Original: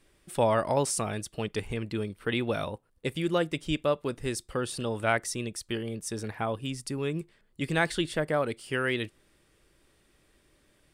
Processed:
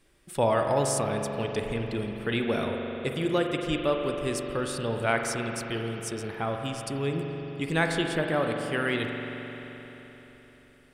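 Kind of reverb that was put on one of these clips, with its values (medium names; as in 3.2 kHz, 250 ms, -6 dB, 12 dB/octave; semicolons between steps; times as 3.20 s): spring tank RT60 4 s, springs 43 ms, chirp 45 ms, DRR 2.5 dB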